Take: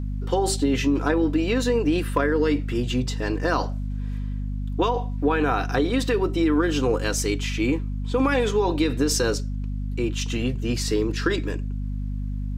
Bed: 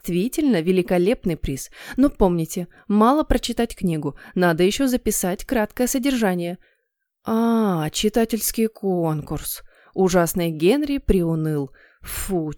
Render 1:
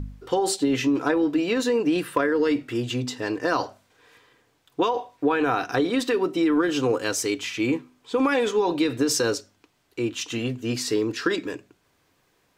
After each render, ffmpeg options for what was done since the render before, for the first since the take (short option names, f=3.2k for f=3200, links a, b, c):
-af "bandreject=f=50:t=h:w=4,bandreject=f=100:t=h:w=4,bandreject=f=150:t=h:w=4,bandreject=f=200:t=h:w=4,bandreject=f=250:t=h:w=4"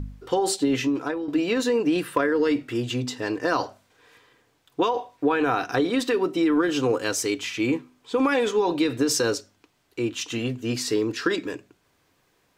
-filter_complex "[0:a]asplit=2[a][b];[a]atrim=end=1.28,asetpts=PTS-STARTPTS,afade=t=out:st=0.74:d=0.54:silence=0.281838[c];[b]atrim=start=1.28,asetpts=PTS-STARTPTS,afade=t=in:d=0.004:c=hsin:silence=0.281838[d];[c][d]concat=n=2:v=0:a=1"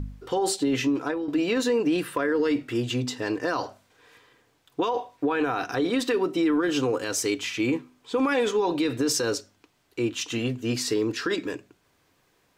-af "alimiter=limit=-16dB:level=0:latency=1:release=54"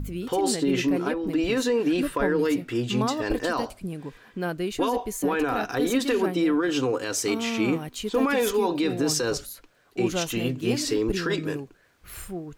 -filter_complex "[1:a]volume=-11.5dB[a];[0:a][a]amix=inputs=2:normalize=0"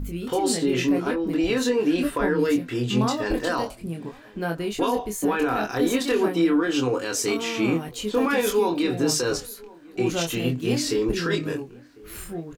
-filter_complex "[0:a]asplit=2[a][b];[b]adelay=24,volume=-4dB[c];[a][c]amix=inputs=2:normalize=0,asplit=2[d][e];[e]adelay=1050,volume=-23dB,highshelf=f=4k:g=-23.6[f];[d][f]amix=inputs=2:normalize=0"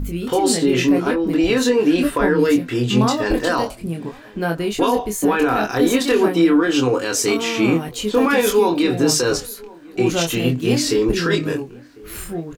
-af "volume=6dB"